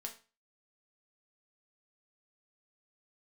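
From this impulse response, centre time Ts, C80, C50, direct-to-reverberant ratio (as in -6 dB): 13 ms, 17.0 dB, 12.0 dB, 1.5 dB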